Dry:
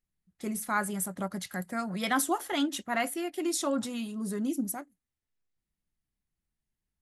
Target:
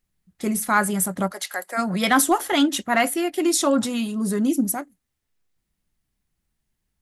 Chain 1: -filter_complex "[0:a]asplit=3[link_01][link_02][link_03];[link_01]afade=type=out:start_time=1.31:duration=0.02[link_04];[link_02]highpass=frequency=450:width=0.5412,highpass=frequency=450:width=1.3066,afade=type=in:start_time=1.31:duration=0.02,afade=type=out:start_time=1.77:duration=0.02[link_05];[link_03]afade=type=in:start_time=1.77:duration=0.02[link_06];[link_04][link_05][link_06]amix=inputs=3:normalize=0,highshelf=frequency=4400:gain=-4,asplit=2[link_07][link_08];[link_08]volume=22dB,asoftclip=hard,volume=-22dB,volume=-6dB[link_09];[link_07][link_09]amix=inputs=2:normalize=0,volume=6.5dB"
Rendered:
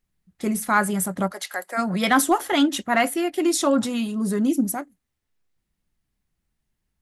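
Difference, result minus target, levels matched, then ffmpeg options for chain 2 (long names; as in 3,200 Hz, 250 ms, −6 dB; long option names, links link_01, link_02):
8,000 Hz band −2.5 dB
-filter_complex "[0:a]asplit=3[link_01][link_02][link_03];[link_01]afade=type=out:start_time=1.31:duration=0.02[link_04];[link_02]highpass=frequency=450:width=0.5412,highpass=frequency=450:width=1.3066,afade=type=in:start_time=1.31:duration=0.02,afade=type=out:start_time=1.77:duration=0.02[link_05];[link_03]afade=type=in:start_time=1.77:duration=0.02[link_06];[link_04][link_05][link_06]amix=inputs=3:normalize=0,asplit=2[link_07][link_08];[link_08]volume=22dB,asoftclip=hard,volume=-22dB,volume=-6dB[link_09];[link_07][link_09]amix=inputs=2:normalize=0,volume=6.5dB"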